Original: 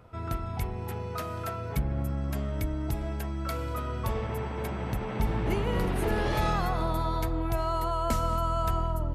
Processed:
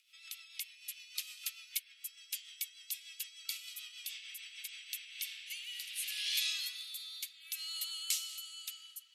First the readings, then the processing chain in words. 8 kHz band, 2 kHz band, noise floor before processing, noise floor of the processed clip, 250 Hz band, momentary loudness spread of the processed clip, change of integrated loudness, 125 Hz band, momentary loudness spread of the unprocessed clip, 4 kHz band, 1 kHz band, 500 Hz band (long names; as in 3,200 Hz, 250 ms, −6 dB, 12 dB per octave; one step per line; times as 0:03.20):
+6.5 dB, −6.0 dB, −36 dBFS, −61 dBFS, below −40 dB, 11 LU, −9.0 dB, below −40 dB, 6 LU, +6.5 dB, below −35 dB, below −40 dB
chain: Butterworth high-pass 2,700 Hz 36 dB per octave
rotating-speaker cabinet horn 6.7 Hz, later 0.65 Hz, at 0:04.56
level +9 dB